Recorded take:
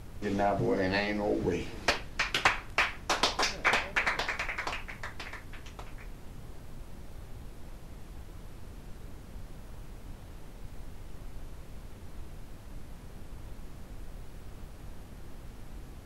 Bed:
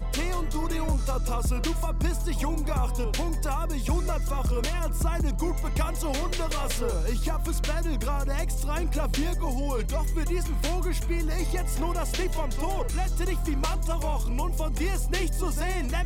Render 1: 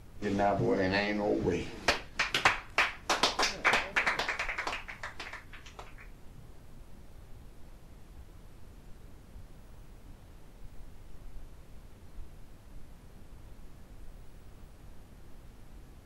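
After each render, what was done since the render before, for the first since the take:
noise reduction from a noise print 6 dB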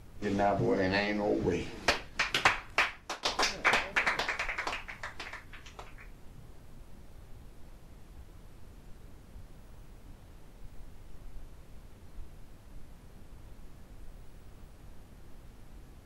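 0:02.78–0:03.25: fade out, to −22 dB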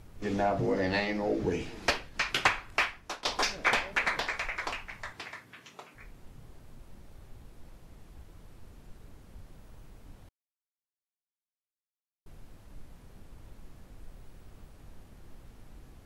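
0:05.12–0:05.95: high-pass filter 82 Hz → 190 Hz 24 dB per octave
0:10.29–0:12.26: silence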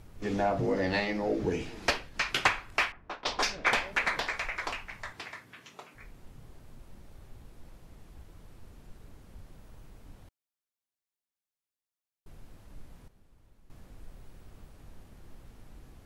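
0:02.92–0:03.72: low-pass that shuts in the quiet parts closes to 1,400 Hz, open at −24.5 dBFS
0:13.08–0:13.70: clip gain −11.5 dB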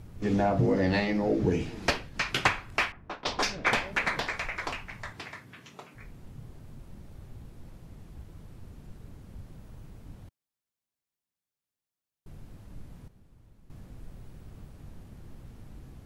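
parametric band 130 Hz +8.5 dB 2.5 octaves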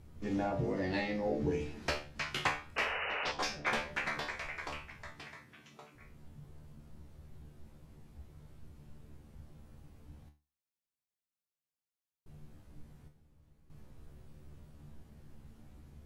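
tuned comb filter 74 Hz, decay 0.3 s, harmonics all, mix 90%
0:02.76–0:03.32: sound drawn into the spectrogram noise 400–3,000 Hz −37 dBFS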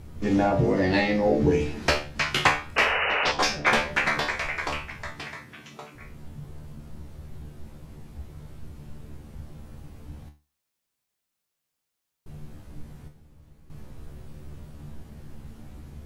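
level +12 dB

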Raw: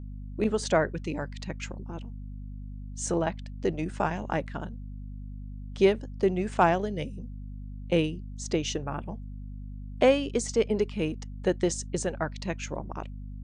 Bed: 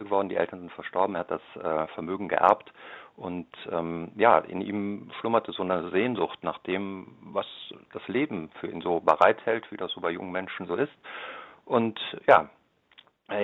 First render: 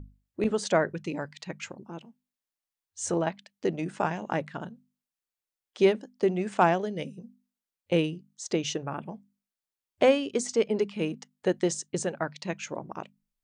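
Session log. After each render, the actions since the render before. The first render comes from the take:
mains-hum notches 50/100/150/200/250 Hz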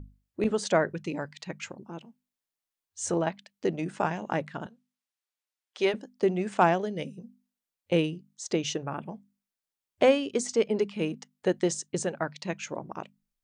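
0:04.66–0:05.94: meter weighting curve A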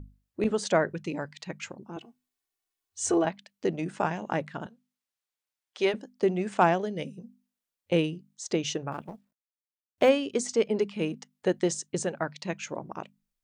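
0:01.96–0:03.25: comb filter 2.7 ms, depth 98%
0:08.92–0:10.09: mu-law and A-law mismatch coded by A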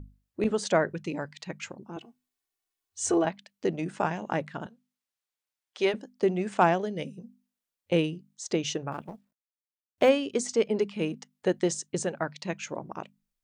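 no processing that can be heard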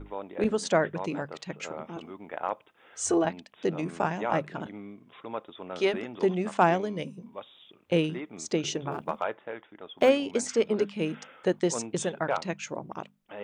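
mix in bed −12 dB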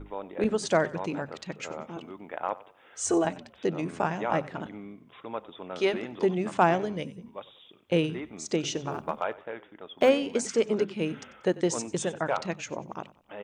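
echo with shifted repeats 93 ms, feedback 40%, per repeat −33 Hz, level −19 dB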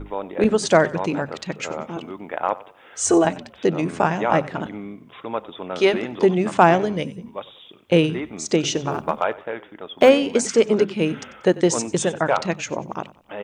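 level +8.5 dB
brickwall limiter −2 dBFS, peak gain reduction 1 dB

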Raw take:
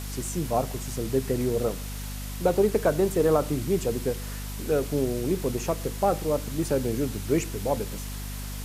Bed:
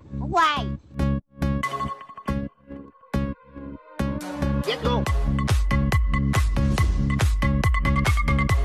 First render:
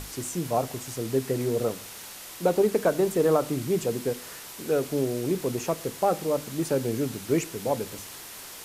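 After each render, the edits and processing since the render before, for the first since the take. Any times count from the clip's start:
mains-hum notches 50/100/150/200/250 Hz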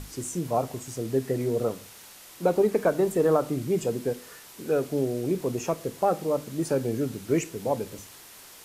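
noise reduction from a noise print 6 dB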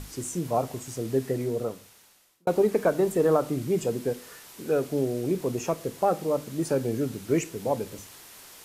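0:01.23–0:02.47: fade out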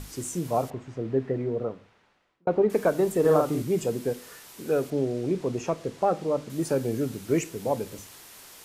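0:00.70–0:02.70: low-pass filter 2,100 Hz
0:03.20–0:03.62: double-tracking delay 46 ms −3 dB
0:04.90–0:06.50: high-frequency loss of the air 66 metres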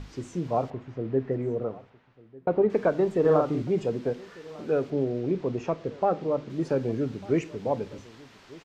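high-frequency loss of the air 180 metres
single-tap delay 1,198 ms −22 dB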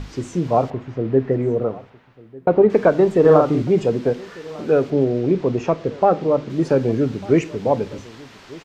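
level +9 dB
brickwall limiter −1 dBFS, peak gain reduction 1 dB

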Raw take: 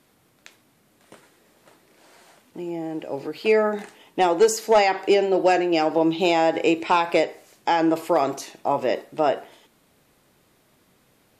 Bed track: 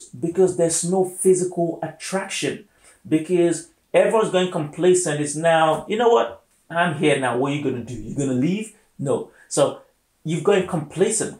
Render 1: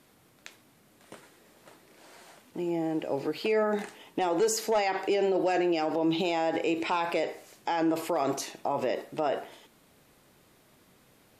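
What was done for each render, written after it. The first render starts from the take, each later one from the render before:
brickwall limiter −19 dBFS, peak gain reduction 10 dB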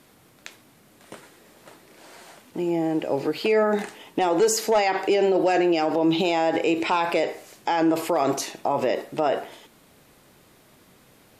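level +6 dB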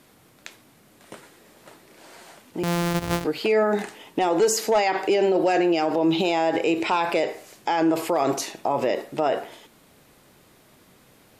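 0:02.63–0:03.25: samples sorted by size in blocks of 256 samples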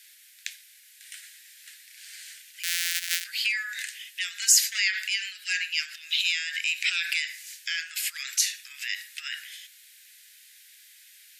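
Butterworth high-pass 1,600 Hz 72 dB per octave
high-shelf EQ 2,200 Hz +8.5 dB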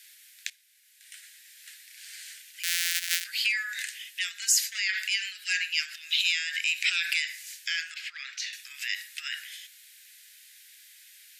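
0:00.50–0:01.72: fade in, from −14.5 dB
0:04.32–0:04.89: clip gain −4.5 dB
0:07.94–0:08.53: high-frequency loss of the air 210 metres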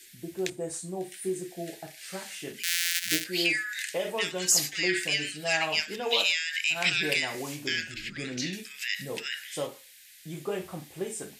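mix in bed track −15.5 dB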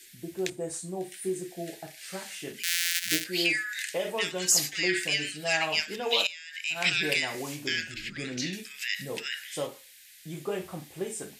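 0:06.27–0:06.85: fade in quadratic, from −16 dB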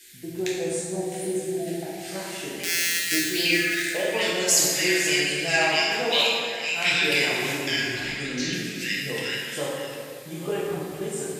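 delay that plays each chunk backwards 478 ms, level −11.5 dB
dense smooth reverb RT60 2.1 s, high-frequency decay 0.6×, DRR −4.5 dB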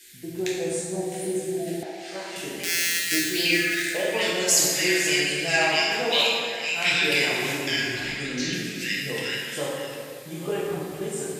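0:01.83–0:02.36: three-way crossover with the lows and the highs turned down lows −17 dB, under 260 Hz, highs −16 dB, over 6,700 Hz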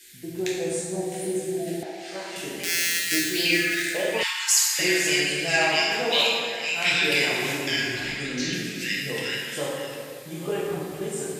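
0:04.23–0:04.79: linear-phase brick-wall high-pass 840 Hz

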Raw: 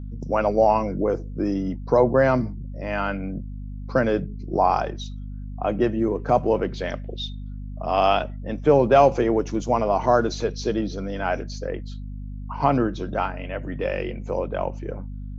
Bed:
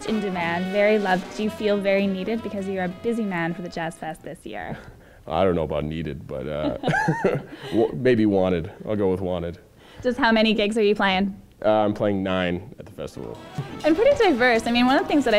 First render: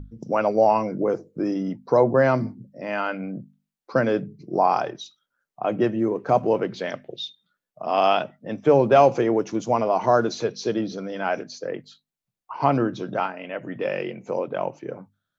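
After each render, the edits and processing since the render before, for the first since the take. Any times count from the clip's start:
mains-hum notches 50/100/150/200/250 Hz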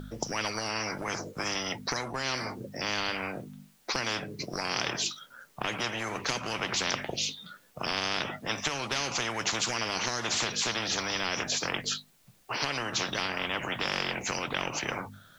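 downward compressor, threshold −24 dBFS, peak gain reduction 13 dB
every bin compressed towards the loudest bin 10 to 1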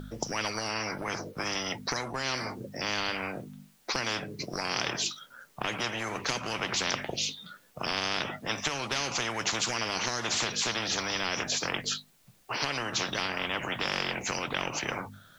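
0:00.74–0:01.53: parametric band 7,100 Hz −10 dB 0.31 octaves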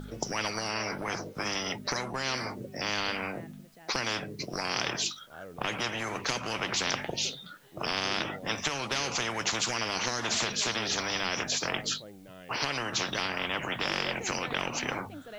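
mix in bed −26 dB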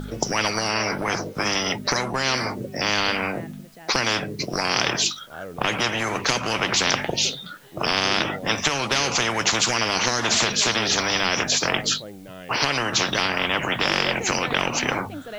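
level +9 dB

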